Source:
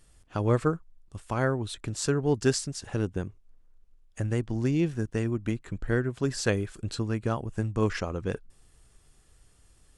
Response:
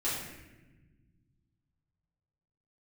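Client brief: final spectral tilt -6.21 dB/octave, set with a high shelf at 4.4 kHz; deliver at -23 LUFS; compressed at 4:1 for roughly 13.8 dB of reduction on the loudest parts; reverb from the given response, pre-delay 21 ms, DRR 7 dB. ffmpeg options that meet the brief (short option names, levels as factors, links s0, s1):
-filter_complex "[0:a]highshelf=f=4400:g=-7.5,acompressor=threshold=0.0158:ratio=4,asplit=2[s0][s1];[1:a]atrim=start_sample=2205,adelay=21[s2];[s1][s2]afir=irnorm=-1:irlink=0,volume=0.211[s3];[s0][s3]amix=inputs=2:normalize=0,volume=6.31"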